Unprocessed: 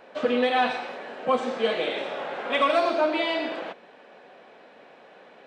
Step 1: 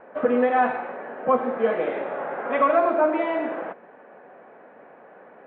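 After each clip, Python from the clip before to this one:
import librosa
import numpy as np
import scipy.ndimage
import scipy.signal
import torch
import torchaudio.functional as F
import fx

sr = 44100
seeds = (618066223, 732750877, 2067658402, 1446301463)

y = scipy.signal.sosfilt(scipy.signal.butter(4, 1800.0, 'lowpass', fs=sr, output='sos'), x)
y = y * 10.0 ** (3.0 / 20.0)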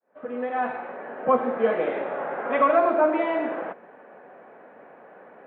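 y = fx.fade_in_head(x, sr, length_s=1.22)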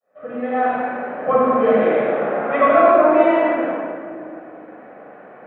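y = fx.room_shoebox(x, sr, seeds[0], volume_m3=3300.0, walls='mixed', distance_m=6.3)
y = y * 10.0 ** (-2.0 / 20.0)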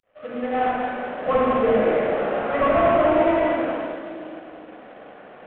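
y = fx.cvsd(x, sr, bps=16000)
y = y * 10.0 ** (-2.0 / 20.0)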